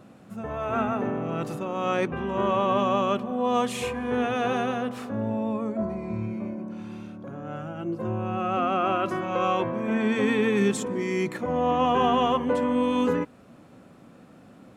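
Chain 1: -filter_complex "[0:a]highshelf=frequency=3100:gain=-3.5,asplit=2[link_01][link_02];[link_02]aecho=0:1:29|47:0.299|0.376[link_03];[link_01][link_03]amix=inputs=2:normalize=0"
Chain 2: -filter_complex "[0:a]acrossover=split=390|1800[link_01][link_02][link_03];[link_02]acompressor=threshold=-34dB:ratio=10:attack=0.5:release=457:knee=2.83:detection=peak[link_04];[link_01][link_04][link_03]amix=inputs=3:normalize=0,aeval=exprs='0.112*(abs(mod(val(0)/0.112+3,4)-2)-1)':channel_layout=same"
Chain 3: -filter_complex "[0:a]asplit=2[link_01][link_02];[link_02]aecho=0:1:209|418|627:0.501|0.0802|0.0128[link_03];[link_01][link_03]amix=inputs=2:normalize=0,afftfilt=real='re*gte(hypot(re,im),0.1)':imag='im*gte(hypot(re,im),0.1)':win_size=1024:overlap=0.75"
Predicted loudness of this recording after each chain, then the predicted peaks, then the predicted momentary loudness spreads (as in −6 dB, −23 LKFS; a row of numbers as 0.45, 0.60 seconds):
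−26.0, −30.0, −26.0 LKFS; −10.0, −19.0, −10.5 dBFS; 12, 10, 13 LU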